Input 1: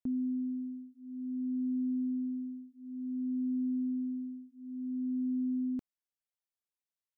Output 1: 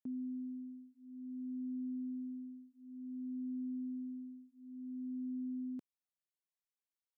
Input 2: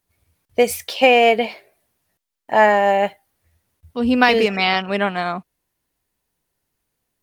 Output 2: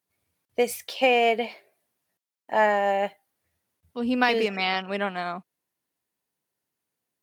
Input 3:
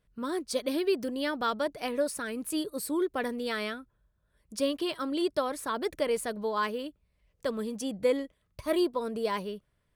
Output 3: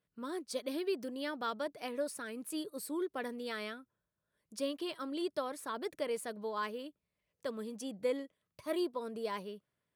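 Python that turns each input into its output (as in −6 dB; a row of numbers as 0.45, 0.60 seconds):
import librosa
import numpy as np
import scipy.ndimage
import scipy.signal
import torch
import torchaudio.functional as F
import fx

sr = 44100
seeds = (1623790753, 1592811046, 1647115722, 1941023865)

y = scipy.signal.sosfilt(scipy.signal.butter(2, 150.0, 'highpass', fs=sr, output='sos'), x)
y = y * 10.0 ** (-7.5 / 20.0)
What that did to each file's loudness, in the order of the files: −8.0, −7.5, −7.5 LU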